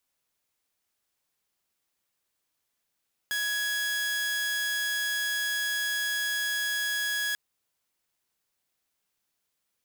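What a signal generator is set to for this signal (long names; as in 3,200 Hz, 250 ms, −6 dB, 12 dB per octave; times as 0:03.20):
tone saw 1,670 Hz −24.5 dBFS 4.04 s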